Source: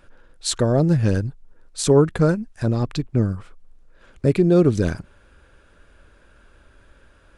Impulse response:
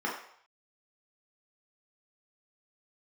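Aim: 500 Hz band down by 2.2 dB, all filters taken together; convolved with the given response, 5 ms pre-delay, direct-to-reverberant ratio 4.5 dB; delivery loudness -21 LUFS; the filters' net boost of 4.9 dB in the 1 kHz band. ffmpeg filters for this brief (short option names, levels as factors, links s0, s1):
-filter_complex "[0:a]equalizer=f=500:t=o:g=-4.5,equalizer=f=1000:t=o:g=8,asplit=2[s0][s1];[1:a]atrim=start_sample=2205,adelay=5[s2];[s1][s2]afir=irnorm=-1:irlink=0,volume=0.224[s3];[s0][s3]amix=inputs=2:normalize=0,volume=0.891"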